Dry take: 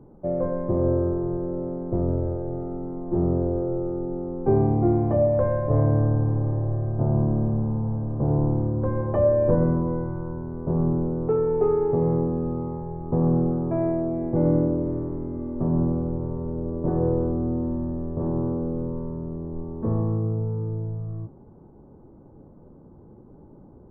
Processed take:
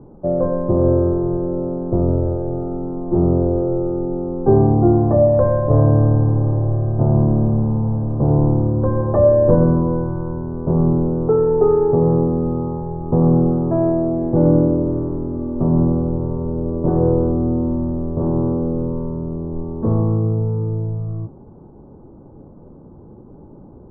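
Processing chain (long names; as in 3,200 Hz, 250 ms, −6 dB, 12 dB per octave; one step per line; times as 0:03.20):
low-pass filter 1,500 Hz 24 dB per octave
level +7 dB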